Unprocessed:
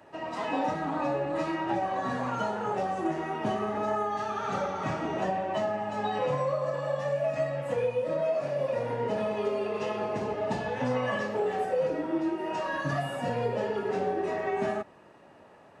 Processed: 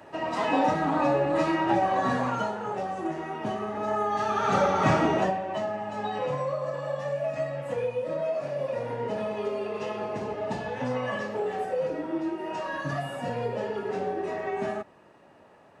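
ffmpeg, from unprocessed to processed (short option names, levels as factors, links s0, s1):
-af "volume=7.08,afade=t=out:st=2.1:d=0.48:silence=0.446684,afade=t=in:st=3.77:d=1.2:silence=0.266073,afade=t=out:st=4.97:d=0.42:silence=0.281838"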